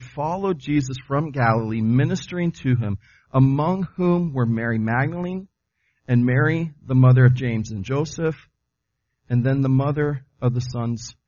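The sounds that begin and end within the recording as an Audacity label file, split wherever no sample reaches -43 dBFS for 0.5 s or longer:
6.080000	8.440000	sound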